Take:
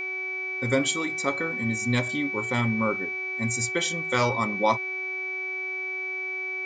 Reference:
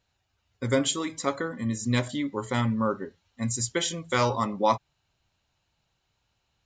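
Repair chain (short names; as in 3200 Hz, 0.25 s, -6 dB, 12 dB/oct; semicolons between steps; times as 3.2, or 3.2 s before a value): de-hum 373.9 Hz, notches 17; notch 2300 Hz, Q 30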